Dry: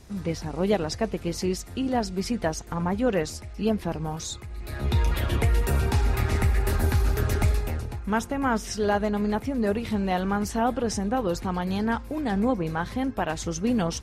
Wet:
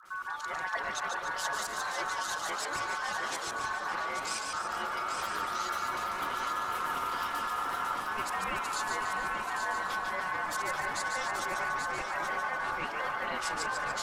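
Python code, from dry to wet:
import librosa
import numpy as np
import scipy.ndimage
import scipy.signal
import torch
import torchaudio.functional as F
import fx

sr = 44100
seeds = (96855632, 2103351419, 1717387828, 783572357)

y = x + 0.87 * np.pad(x, (int(5.3 * sr / 1000.0), 0))[:len(x)]
y = fx.level_steps(y, sr, step_db=17)
y = fx.dispersion(y, sr, late='highs', ms=54.0, hz=830.0)
y = y * np.sin(2.0 * np.pi * 1300.0 * np.arange(len(y)) / sr)
y = fx.dmg_crackle(y, sr, seeds[0], per_s=170.0, level_db=-58.0)
y = fx.echo_split(y, sr, split_hz=1700.0, low_ms=715, high_ms=145, feedback_pct=52, wet_db=-4.5)
y = fx.echo_pitch(y, sr, ms=168, semitones=-4, count=3, db_per_echo=-6.0)
y = y + 10.0 ** (-6.5 / 20.0) * np.pad(y, (int(833 * sr / 1000.0), 0))[:len(y)]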